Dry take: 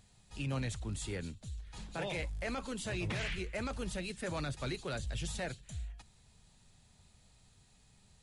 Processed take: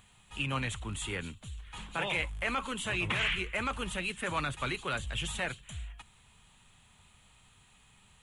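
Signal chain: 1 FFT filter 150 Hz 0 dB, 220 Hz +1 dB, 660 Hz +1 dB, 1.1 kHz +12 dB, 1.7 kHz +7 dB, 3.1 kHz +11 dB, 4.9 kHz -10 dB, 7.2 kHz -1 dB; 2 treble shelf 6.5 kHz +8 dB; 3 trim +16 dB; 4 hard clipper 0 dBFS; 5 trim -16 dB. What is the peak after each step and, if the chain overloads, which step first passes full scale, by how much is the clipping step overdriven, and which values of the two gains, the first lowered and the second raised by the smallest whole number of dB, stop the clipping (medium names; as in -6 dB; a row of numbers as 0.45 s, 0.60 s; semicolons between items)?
-19.0 dBFS, -18.5 dBFS, -2.5 dBFS, -2.5 dBFS, -18.5 dBFS; nothing clips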